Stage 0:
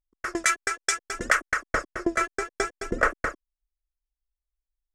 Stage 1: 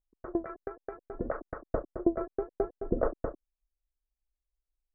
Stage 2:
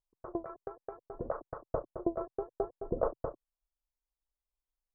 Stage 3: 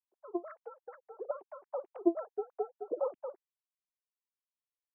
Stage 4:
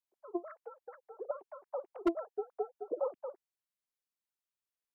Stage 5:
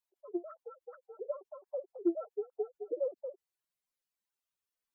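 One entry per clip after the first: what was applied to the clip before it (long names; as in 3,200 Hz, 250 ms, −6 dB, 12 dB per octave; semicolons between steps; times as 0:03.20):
inverse Chebyshev low-pass filter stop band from 4,600 Hz, stop band 80 dB
octave-band graphic EQ 125/250/500/1,000/2,000 Hz +8/−4/+5/+11/−9 dB; level −8 dB
three sine waves on the formant tracks
wave folding −19.5 dBFS; level −1 dB
expanding power law on the bin magnitudes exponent 2.3; level +1 dB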